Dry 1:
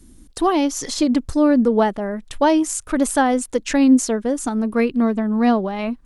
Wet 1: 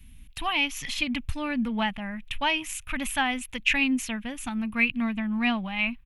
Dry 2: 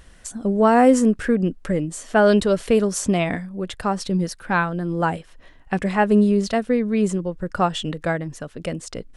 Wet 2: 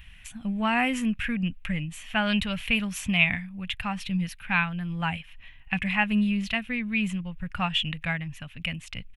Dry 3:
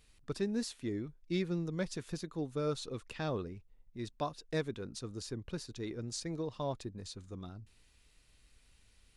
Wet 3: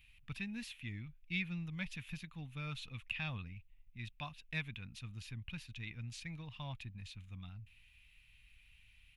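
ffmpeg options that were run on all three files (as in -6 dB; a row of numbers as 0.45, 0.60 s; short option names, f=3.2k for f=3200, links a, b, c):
-af "firequalizer=gain_entry='entry(110,0);entry(220,-8);entry(380,-28);entry(790,-9);entry(1400,-7);entry(2500,12);entry(4600,-11);entry(8700,-13);entry(12000,1)':delay=0.05:min_phase=1"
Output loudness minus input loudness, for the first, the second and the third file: -8.5, -6.5, -5.5 LU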